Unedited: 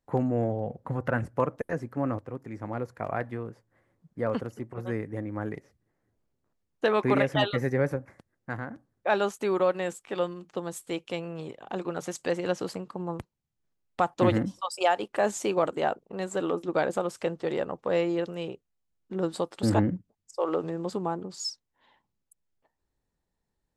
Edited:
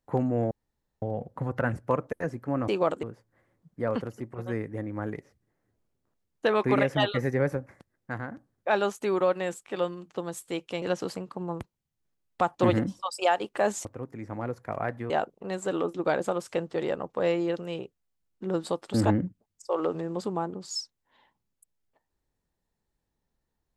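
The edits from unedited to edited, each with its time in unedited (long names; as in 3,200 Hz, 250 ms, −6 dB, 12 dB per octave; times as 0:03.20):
0:00.51: splice in room tone 0.51 s
0:02.17–0:03.42: swap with 0:15.44–0:15.79
0:11.21–0:12.41: remove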